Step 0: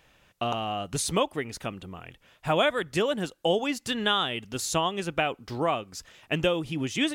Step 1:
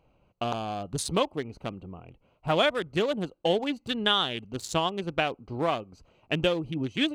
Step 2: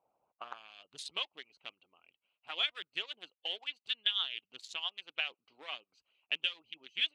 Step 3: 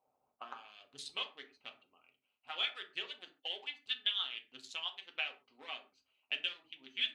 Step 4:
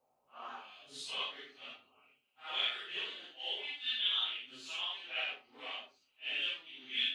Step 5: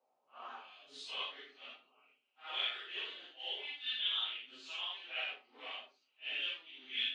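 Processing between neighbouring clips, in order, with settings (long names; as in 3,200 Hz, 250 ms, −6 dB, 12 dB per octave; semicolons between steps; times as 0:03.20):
adaptive Wiener filter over 25 samples; parametric band 3,700 Hz +4 dB 0.7 octaves
harmonic and percussive parts rebalanced harmonic −16 dB; band-pass filter sweep 780 Hz → 3,000 Hz, 0:00.25–0:00.75
convolution reverb, pre-delay 4 ms, DRR 2.5 dB; level −3.5 dB
random phases in long frames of 200 ms; level +2.5 dB
band-pass filter 270–5,400 Hz; level −2 dB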